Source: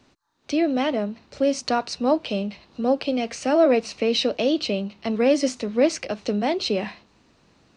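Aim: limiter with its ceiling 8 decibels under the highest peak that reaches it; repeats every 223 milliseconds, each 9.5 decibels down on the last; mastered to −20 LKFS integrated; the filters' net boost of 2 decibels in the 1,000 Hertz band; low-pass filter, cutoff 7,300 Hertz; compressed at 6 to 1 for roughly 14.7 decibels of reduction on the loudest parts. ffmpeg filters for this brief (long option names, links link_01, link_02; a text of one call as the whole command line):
ffmpeg -i in.wav -af "lowpass=7300,equalizer=frequency=1000:width_type=o:gain=3,acompressor=threshold=-29dB:ratio=6,alimiter=level_in=0.5dB:limit=-24dB:level=0:latency=1,volume=-0.5dB,aecho=1:1:223|446|669|892:0.335|0.111|0.0365|0.012,volume=14.5dB" out.wav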